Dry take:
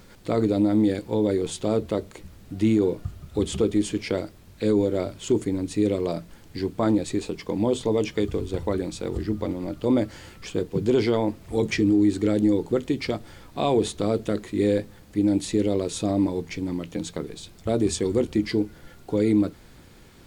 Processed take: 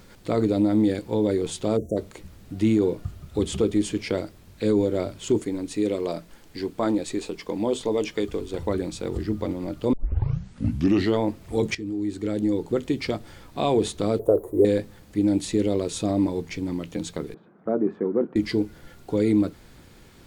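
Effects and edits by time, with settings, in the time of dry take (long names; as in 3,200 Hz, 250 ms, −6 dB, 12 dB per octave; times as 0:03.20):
0:01.77–0:01.97: time-frequency box erased 720–5,600 Hz
0:05.39–0:08.59: parametric band 99 Hz −9.5 dB 1.8 octaves
0:09.93: tape start 1.24 s
0:11.75–0:12.90: fade in, from −14.5 dB
0:14.19–0:14.65: drawn EQ curve 130 Hz 0 dB, 200 Hz −12 dB, 460 Hz +12 dB, 950 Hz +3 dB, 1,400 Hz −10 dB, 2,200 Hz −30 dB, 5,000 Hz −27 dB, 7,400 Hz −12 dB, 12,000 Hz +9 dB
0:17.34–0:18.36: Chebyshev band-pass filter 180–1,500 Hz, order 3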